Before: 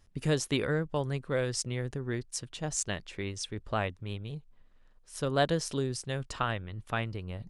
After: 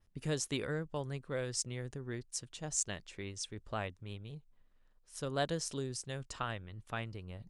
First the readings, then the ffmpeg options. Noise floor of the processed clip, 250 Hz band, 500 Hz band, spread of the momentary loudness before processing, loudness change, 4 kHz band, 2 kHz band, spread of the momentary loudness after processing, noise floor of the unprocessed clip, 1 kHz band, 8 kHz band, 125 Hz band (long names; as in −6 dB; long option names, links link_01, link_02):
−68 dBFS, −7.5 dB, −7.5 dB, 10 LU, −6.0 dB, −5.5 dB, −7.0 dB, 10 LU, −60 dBFS, −7.5 dB, −1.5 dB, −7.5 dB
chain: -af "adynamicequalizer=threshold=0.00282:dfrequency=7300:dqfactor=1.1:tfrequency=7300:tqfactor=1.1:attack=5:release=100:ratio=0.375:range=3.5:mode=boostabove:tftype=bell,volume=-7.5dB"